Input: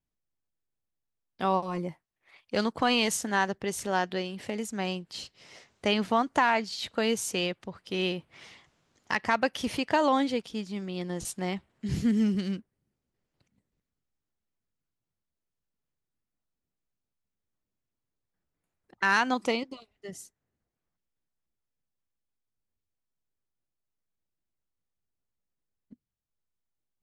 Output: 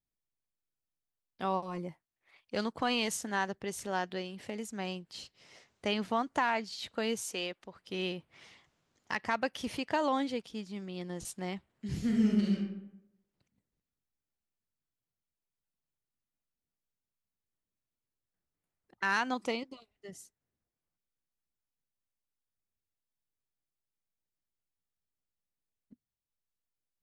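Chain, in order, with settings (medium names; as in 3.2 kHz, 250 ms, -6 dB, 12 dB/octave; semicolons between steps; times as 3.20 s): 7.22–7.76 s: peaking EQ 110 Hz -14 dB 1.5 oct; 11.98–12.58 s: reverb throw, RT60 0.83 s, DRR -2 dB; trim -6 dB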